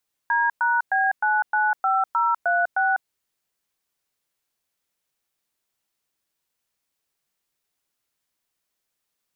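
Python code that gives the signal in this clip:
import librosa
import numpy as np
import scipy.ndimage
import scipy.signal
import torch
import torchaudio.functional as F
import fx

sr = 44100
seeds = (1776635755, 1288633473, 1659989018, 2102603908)

y = fx.dtmf(sr, digits='D#B995036', tone_ms=199, gap_ms=109, level_db=-20.5)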